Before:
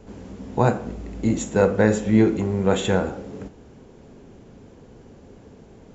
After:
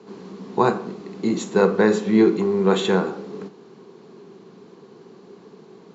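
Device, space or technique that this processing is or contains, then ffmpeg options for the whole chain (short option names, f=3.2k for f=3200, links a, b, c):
television speaker: -af "highpass=f=170:w=0.5412,highpass=f=170:w=1.3066,equalizer=f=180:t=q:w=4:g=5,equalizer=f=260:t=q:w=4:g=-5,equalizer=f=390:t=q:w=4:g=9,equalizer=f=570:t=q:w=4:g=-7,equalizer=f=1.1k:t=q:w=4:g=9,equalizer=f=4.2k:t=q:w=4:g=9,lowpass=f=6.7k:w=0.5412,lowpass=f=6.7k:w=1.3066"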